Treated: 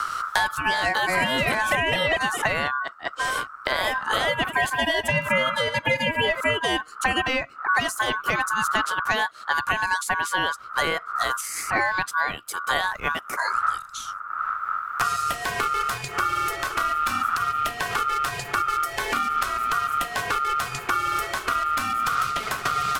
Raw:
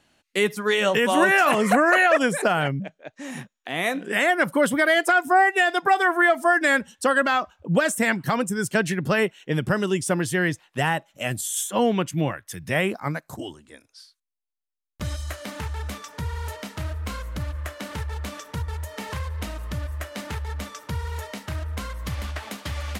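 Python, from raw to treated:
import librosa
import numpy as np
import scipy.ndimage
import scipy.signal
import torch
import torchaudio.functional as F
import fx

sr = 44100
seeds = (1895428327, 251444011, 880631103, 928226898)

y = fx.reverse_delay(x, sr, ms=244, wet_db=-12, at=(4.21, 6.55))
y = fx.dmg_wind(y, sr, seeds[0], corner_hz=99.0, level_db=-37.0)
y = fx.peak_eq(y, sr, hz=2400.0, db=-3.5, octaves=2.3)
y = y * np.sin(2.0 * np.pi * 1300.0 * np.arange(len(y)) / sr)
y = fx.band_squash(y, sr, depth_pct=100)
y = y * 10.0 ** (1.5 / 20.0)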